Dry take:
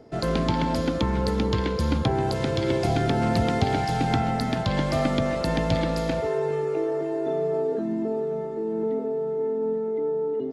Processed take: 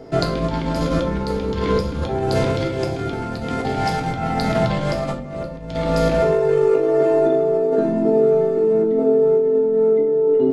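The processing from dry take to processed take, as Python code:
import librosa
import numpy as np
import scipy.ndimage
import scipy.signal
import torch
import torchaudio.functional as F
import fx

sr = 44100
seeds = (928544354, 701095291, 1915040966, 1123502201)

y = fx.low_shelf(x, sr, hz=500.0, db=9.0, at=(5.12, 5.68), fade=0.02)
y = fx.over_compress(y, sr, threshold_db=-27.0, ratio=-0.5)
y = fx.room_shoebox(y, sr, seeds[0], volume_m3=51.0, walls='mixed', distance_m=0.55)
y = F.gain(torch.from_numpy(y), 5.0).numpy()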